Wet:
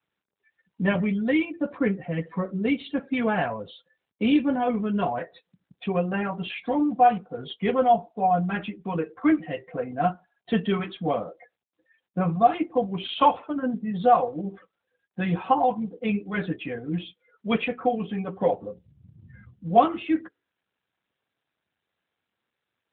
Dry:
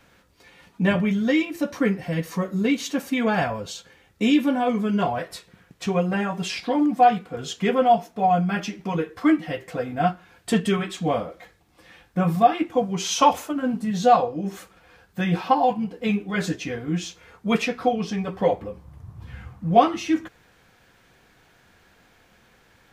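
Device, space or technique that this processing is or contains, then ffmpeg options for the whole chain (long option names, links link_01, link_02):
mobile call with aggressive noise cancelling: -af "highpass=frequency=130:poles=1,afftdn=noise_reduction=36:noise_floor=-39,volume=-1.5dB" -ar 8000 -c:a libopencore_amrnb -b:a 12200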